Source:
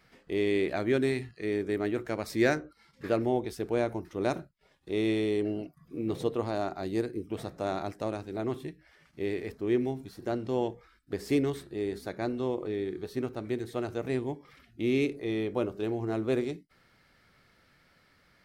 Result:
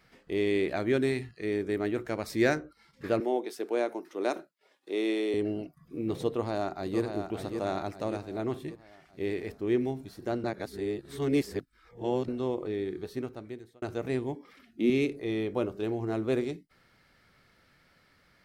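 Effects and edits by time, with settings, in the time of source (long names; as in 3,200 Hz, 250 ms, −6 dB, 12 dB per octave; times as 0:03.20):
0:03.20–0:05.34: high-pass filter 280 Hz 24 dB per octave
0:06.28–0:07.01: delay throw 580 ms, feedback 50%, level −6.5 dB
0:10.44–0:12.28: reverse
0:13.00–0:13.82: fade out
0:14.35–0:14.90: low shelf with overshoot 170 Hz −9.5 dB, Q 3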